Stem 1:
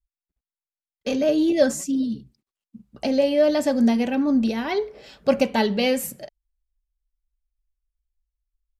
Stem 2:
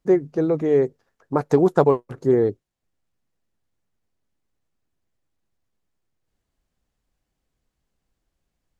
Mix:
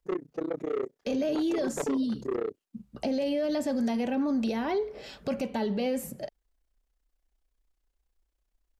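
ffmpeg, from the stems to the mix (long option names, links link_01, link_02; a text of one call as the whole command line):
ffmpeg -i stem1.wav -i stem2.wav -filter_complex "[0:a]acrossover=split=440|1100[link_01][link_02][link_03];[link_01]acompressor=threshold=-30dB:ratio=4[link_04];[link_02]acompressor=threshold=-33dB:ratio=4[link_05];[link_03]acompressor=threshold=-43dB:ratio=4[link_06];[link_04][link_05][link_06]amix=inputs=3:normalize=0,volume=1.5dB[link_07];[1:a]highpass=290,tremolo=f=31:d=1,asoftclip=type=tanh:threshold=-22dB,volume=-3dB[link_08];[link_07][link_08]amix=inputs=2:normalize=0,alimiter=limit=-22dB:level=0:latency=1:release=13" out.wav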